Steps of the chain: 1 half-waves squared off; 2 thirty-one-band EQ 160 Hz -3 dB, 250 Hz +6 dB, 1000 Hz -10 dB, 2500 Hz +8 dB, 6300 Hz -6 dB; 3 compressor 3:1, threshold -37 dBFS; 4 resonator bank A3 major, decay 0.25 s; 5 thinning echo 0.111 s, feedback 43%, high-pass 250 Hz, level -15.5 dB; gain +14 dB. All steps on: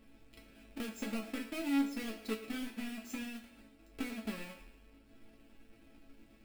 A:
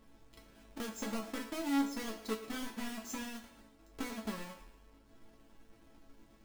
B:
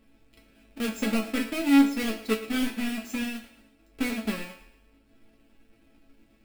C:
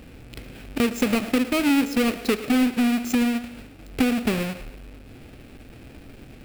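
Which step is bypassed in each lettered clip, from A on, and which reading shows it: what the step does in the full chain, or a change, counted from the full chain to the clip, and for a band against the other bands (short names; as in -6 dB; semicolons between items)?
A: 2, 1 kHz band +4.0 dB; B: 3, mean gain reduction 7.0 dB; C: 4, 125 Hz band +3.5 dB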